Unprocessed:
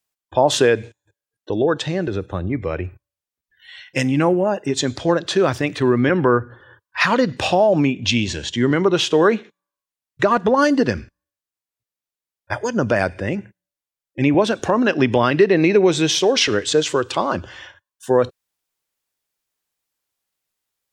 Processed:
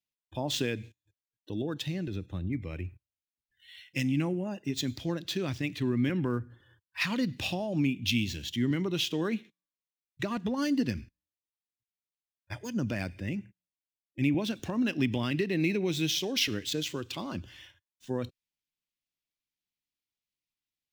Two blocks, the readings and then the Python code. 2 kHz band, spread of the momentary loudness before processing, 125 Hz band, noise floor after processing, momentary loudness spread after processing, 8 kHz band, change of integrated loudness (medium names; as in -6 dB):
-13.5 dB, 11 LU, -8.5 dB, under -85 dBFS, 11 LU, -12.5 dB, -13.0 dB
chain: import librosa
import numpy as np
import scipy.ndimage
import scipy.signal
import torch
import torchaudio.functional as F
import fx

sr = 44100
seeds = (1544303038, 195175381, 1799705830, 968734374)

y = scipy.ndimage.median_filter(x, 5, mode='constant')
y = fx.band_shelf(y, sr, hz=810.0, db=-12.5, octaves=2.4)
y = y * 10.0 ** (-8.5 / 20.0)